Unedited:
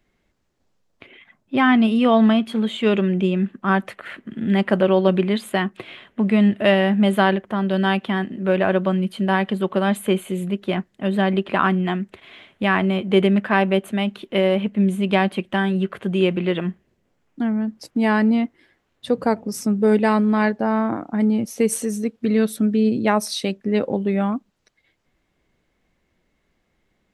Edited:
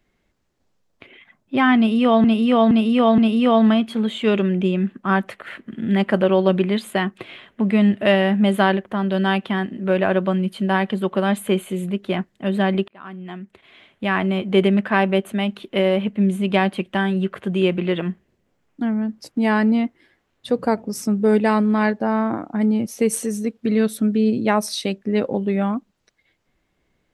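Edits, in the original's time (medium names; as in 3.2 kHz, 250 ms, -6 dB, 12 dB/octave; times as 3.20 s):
1.77–2.24 s: loop, 4 plays
11.47–13.03 s: fade in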